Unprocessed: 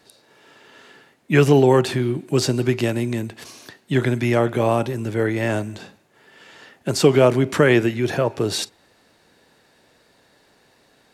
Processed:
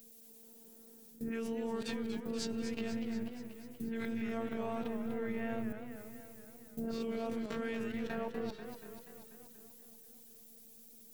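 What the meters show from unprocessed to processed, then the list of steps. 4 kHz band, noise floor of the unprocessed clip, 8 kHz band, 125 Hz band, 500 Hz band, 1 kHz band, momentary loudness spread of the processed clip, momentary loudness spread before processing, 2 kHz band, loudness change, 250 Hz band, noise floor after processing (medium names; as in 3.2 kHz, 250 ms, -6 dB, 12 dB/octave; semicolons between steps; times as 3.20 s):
-20.0 dB, -59 dBFS, -20.5 dB, -28.5 dB, -21.0 dB, -19.5 dB, 16 LU, 12 LU, -20.0 dB, -20.0 dB, -15.5 dB, -57 dBFS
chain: reverse spectral sustain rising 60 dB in 0.31 s; bass shelf 270 Hz +6.5 dB; level-controlled noise filter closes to 320 Hz, open at -9 dBFS; added noise violet -51 dBFS; compression 2.5:1, threshold -33 dBFS, peak gain reduction 18 dB; robot voice 227 Hz; dynamic bell 120 Hz, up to +6 dB, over -53 dBFS, Q 1.7; level held to a coarse grid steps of 20 dB; modulated delay 241 ms, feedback 63%, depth 140 cents, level -9 dB; trim +2.5 dB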